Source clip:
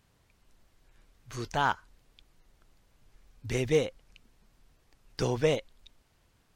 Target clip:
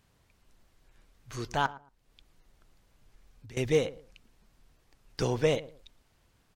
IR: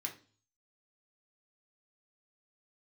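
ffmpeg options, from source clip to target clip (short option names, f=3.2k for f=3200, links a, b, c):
-filter_complex "[0:a]asettb=1/sr,asplit=3[a][b][c];[a]atrim=end=1.664[d];[b]atrim=start=1.66:end=3.57,asetpts=PTS-STARTPTS,afade=t=in:d=0.004:c=qsin,afade=t=out:st=1.906:d=0.004:c=qsin,acompressor=threshold=-50dB:ratio=4[e];[c]atrim=start=3.566[f];[d][e]acrossfade=d=0.004:c1=hsin:c2=qsin[g];[g][f]acrossfade=d=0.004:c1=qsin:c2=hsin,asplit=2[h][i];[i]adelay=113,lowpass=f=1k:p=1,volume=-17dB,asplit=2[j][k];[k]adelay=113,lowpass=f=1k:p=1,volume=0.25[l];[h][j][l]amix=inputs=3:normalize=0"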